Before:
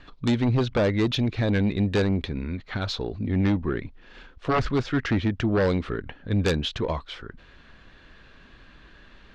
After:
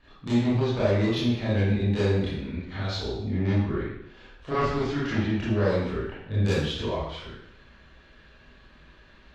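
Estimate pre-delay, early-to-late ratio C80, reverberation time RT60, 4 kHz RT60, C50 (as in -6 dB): 23 ms, 3.0 dB, 0.75 s, 0.70 s, -1.5 dB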